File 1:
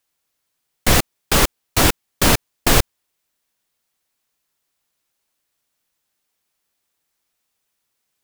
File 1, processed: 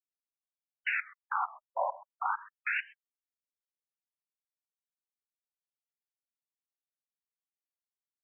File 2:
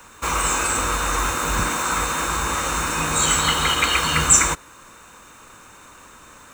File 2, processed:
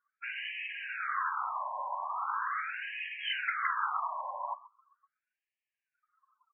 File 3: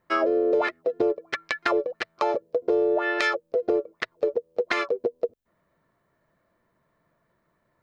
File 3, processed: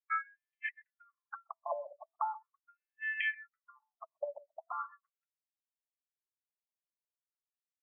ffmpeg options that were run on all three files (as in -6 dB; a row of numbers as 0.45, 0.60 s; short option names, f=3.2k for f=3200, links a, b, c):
-filter_complex "[0:a]asplit=2[a][b];[b]adelay=130,highpass=300,lowpass=3.4k,asoftclip=type=hard:threshold=-11dB,volume=-17dB[c];[a][c]amix=inputs=2:normalize=0,afftdn=nr=33:nf=-34,afftfilt=real='re*between(b*sr/1024,770*pow(2400/770,0.5+0.5*sin(2*PI*0.4*pts/sr))/1.41,770*pow(2400/770,0.5+0.5*sin(2*PI*0.4*pts/sr))*1.41)':imag='im*between(b*sr/1024,770*pow(2400/770,0.5+0.5*sin(2*PI*0.4*pts/sr))/1.41,770*pow(2400/770,0.5+0.5*sin(2*PI*0.4*pts/sr))*1.41)':win_size=1024:overlap=0.75,volume=-7dB"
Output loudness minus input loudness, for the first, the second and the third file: -17.0, -15.5, -14.0 LU